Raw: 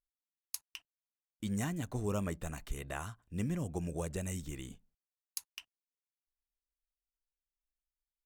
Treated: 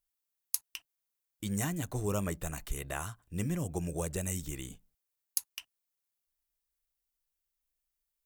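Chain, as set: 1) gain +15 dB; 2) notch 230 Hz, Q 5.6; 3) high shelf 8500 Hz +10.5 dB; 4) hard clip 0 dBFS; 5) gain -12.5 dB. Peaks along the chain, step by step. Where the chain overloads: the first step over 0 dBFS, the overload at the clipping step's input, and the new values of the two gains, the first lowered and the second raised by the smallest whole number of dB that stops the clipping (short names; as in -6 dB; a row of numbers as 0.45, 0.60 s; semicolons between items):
-3.0, -3.0, +3.5, 0.0, -12.5 dBFS; step 3, 3.5 dB; step 1 +11 dB, step 5 -8.5 dB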